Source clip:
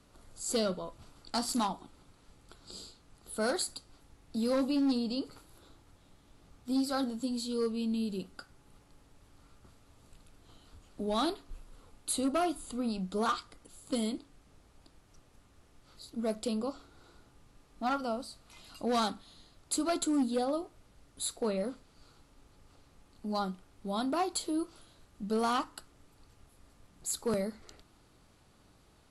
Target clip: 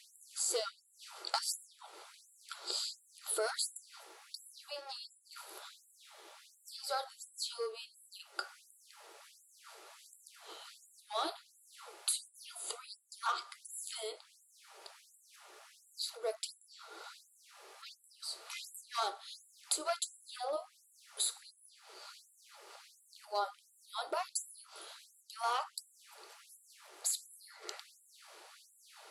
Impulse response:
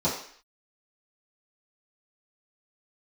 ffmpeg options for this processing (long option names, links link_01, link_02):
-filter_complex "[0:a]acompressor=threshold=-44dB:ratio=6,asplit=2[link_01][link_02];[1:a]atrim=start_sample=2205,asetrate=66150,aresample=44100[link_03];[link_02][link_03]afir=irnorm=-1:irlink=0,volume=-19.5dB[link_04];[link_01][link_04]amix=inputs=2:normalize=0,afftfilt=real='re*gte(b*sr/1024,330*pow(7300/330,0.5+0.5*sin(2*PI*1.4*pts/sr)))':imag='im*gte(b*sr/1024,330*pow(7300/330,0.5+0.5*sin(2*PI*1.4*pts/sr)))':win_size=1024:overlap=0.75,volume=12dB"